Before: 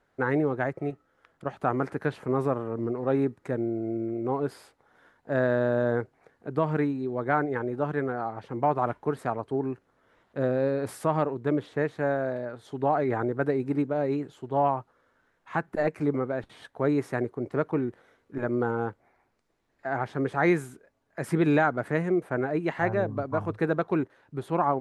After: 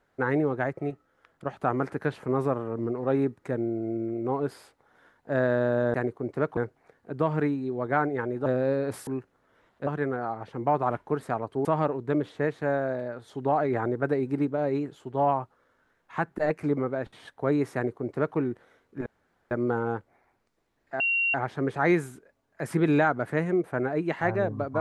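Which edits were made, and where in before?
0:07.83–0:09.61: swap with 0:10.41–0:11.02
0:17.11–0:17.74: duplicate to 0:05.94
0:18.43: splice in room tone 0.45 s
0:19.92: insert tone 2,750 Hz −22 dBFS 0.34 s

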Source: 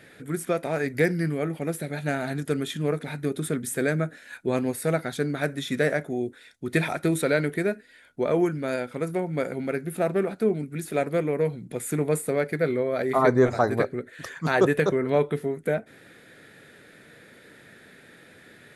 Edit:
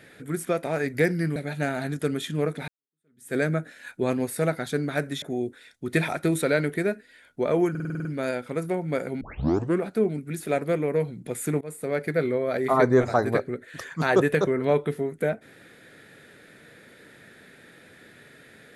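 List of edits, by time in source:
0:01.36–0:01.82: remove
0:03.14–0:03.81: fade in exponential
0:05.68–0:06.02: remove
0:08.50: stutter 0.05 s, 8 plays
0:09.66: tape start 0.59 s
0:12.06–0:12.49: fade in, from −23 dB

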